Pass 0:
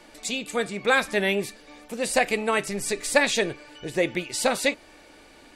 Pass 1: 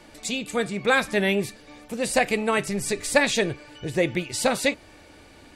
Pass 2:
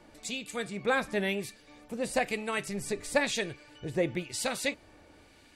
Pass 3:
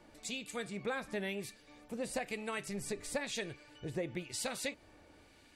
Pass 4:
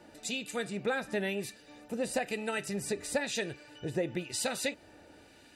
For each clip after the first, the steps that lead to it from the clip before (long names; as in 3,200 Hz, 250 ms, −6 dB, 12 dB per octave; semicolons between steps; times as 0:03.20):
parametric band 94 Hz +12 dB 1.6 octaves
two-band tremolo in antiphase 1 Hz, depth 50%, crossover 1,500 Hz; level −5.5 dB
downward compressor 4 to 1, threshold −30 dBFS, peak gain reduction 9 dB; level −4 dB
notch comb filter 1,100 Hz; level +6 dB